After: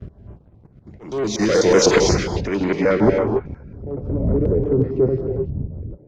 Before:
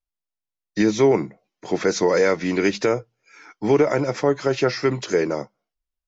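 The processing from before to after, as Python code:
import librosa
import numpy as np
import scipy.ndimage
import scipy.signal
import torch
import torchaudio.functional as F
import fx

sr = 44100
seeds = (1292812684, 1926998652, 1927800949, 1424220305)

y = fx.block_reorder(x, sr, ms=124.0, group=6)
y = fx.dmg_wind(y, sr, seeds[0], corner_hz=110.0, level_db=-30.0)
y = scipy.signal.sosfilt(scipy.signal.butter(2, 57.0, 'highpass', fs=sr, output='sos'), y)
y = fx.high_shelf(y, sr, hz=4600.0, db=8.0)
y = fx.leveller(y, sr, passes=3)
y = fx.auto_swell(y, sr, attack_ms=787.0)
y = fx.filter_sweep_lowpass(y, sr, from_hz=6000.0, to_hz=320.0, start_s=1.94, end_s=4.15, q=0.71)
y = fx.rev_gated(y, sr, seeds[1], gate_ms=310, shape='rising', drr_db=3.0)
y = fx.filter_held_notch(y, sr, hz=11.0, low_hz=890.0, high_hz=5600.0)
y = y * 10.0 ** (-1.0 / 20.0)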